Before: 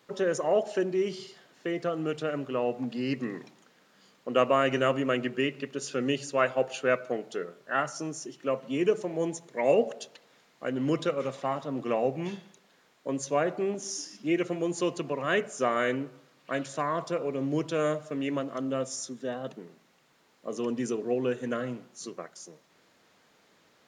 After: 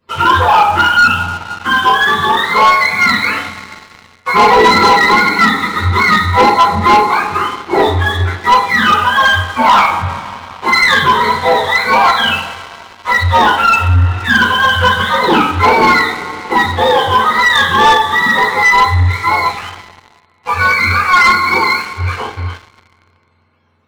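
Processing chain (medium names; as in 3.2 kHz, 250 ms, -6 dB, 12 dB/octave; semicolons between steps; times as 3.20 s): spectrum inverted on a logarithmic axis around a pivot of 730 Hz; bass shelf 440 Hz -12 dB; two-slope reverb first 0.4 s, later 4.2 s, from -22 dB, DRR -9.5 dB; waveshaping leveller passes 3; trim +5 dB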